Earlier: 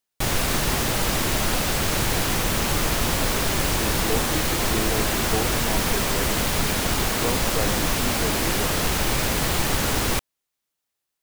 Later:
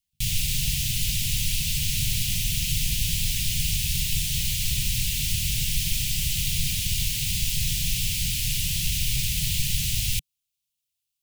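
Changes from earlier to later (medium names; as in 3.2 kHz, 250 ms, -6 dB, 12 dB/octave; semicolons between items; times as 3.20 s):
speech: entry -2.85 s; master: add elliptic band-stop 150–2700 Hz, stop band 40 dB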